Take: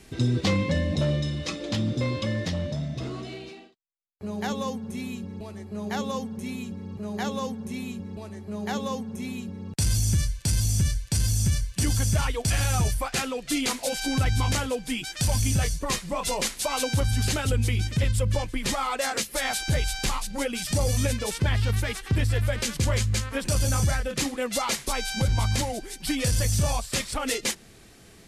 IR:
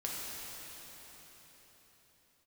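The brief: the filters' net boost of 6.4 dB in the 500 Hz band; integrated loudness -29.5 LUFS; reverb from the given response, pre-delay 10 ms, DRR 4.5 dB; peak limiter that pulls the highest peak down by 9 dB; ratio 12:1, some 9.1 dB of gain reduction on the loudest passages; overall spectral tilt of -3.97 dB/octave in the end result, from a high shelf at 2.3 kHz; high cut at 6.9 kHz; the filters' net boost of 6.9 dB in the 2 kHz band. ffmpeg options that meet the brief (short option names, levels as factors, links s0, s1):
-filter_complex "[0:a]lowpass=6900,equalizer=f=500:t=o:g=6.5,equalizer=f=2000:t=o:g=4,highshelf=f=2300:g=8,acompressor=threshold=0.0501:ratio=12,alimiter=limit=0.0841:level=0:latency=1,asplit=2[s0][s1];[1:a]atrim=start_sample=2205,adelay=10[s2];[s1][s2]afir=irnorm=-1:irlink=0,volume=0.398[s3];[s0][s3]amix=inputs=2:normalize=0,volume=1.06"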